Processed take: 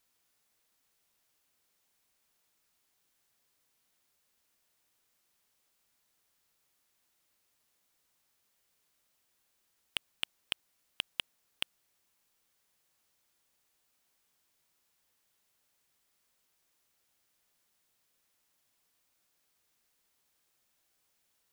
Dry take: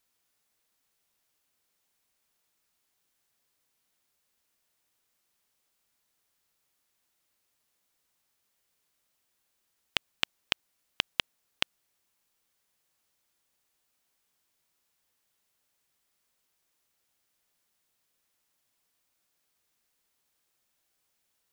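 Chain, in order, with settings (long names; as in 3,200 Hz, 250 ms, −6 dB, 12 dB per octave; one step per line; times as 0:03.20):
soft clipping −16.5 dBFS, distortion −6 dB
level +1 dB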